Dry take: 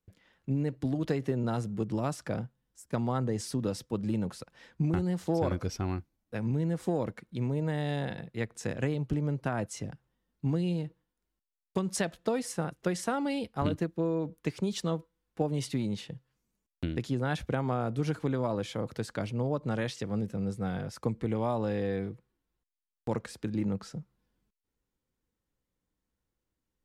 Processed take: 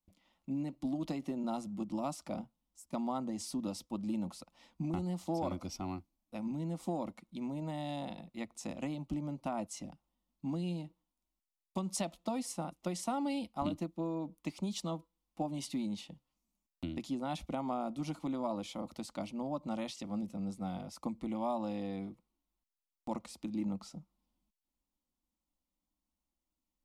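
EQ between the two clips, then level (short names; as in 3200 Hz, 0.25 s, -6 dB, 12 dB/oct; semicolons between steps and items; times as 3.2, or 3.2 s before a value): bell 1700 Hz +5 dB 1.3 oct; fixed phaser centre 440 Hz, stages 6; -3.0 dB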